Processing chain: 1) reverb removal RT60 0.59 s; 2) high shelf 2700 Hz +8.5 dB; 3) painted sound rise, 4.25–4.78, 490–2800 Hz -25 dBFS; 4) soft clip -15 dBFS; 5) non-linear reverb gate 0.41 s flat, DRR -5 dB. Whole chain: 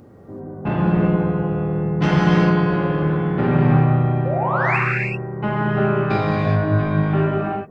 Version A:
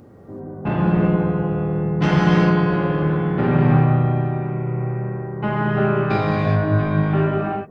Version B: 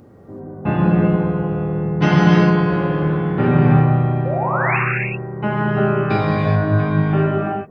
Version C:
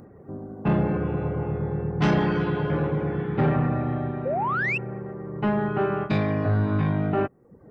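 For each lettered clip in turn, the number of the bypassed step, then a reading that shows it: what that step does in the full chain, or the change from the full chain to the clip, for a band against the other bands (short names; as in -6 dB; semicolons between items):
3, 2 kHz band -3.0 dB; 4, loudness change +1.5 LU; 5, loudness change -6.5 LU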